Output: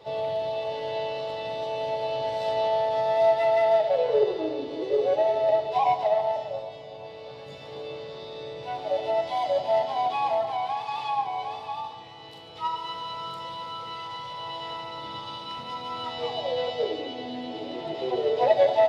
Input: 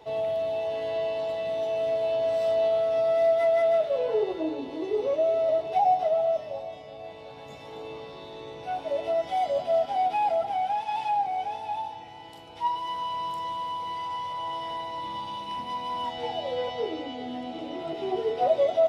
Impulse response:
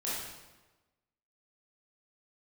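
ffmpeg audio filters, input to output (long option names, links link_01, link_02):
-filter_complex "[0:a]aeval=exprs='0.237*(cos(1*acos(clip(val(0)/0.237,-1,1)))-cos(1*PI/2))+0.0266*(cos(3*acos(clip(val(0)/0.237,-1,1)))-cos(3*PI/2))':channel_layout=same,asplit=2[link_01][link_02];[link_02]asetrate=58866,aresample=44100,atempo=0.749154,volume=-8dB[link_03];[link_01][link_03]amix=inputs=2:normalize=0,equalizer=frequency=125:width_type=o:width=1:gain=11,equalizer=frequency=500:width_type=o:width=1:gain=9,equalizer=frequency=2000:width_type=o:width=1:gain=5,equalizer=frequency=4000:width_type=o:width=1:gain=10,asplit=2[link_04][link_05];[1:a]atrim=start_sample=2205,adelay=33[link_06];[link_05][link_06]afir=irnorm=-1:irlink=0,volume=-14.5dB[link_07];[link_04][link_07]amix=inputs=2:normalize=0,volume=-3.5dB"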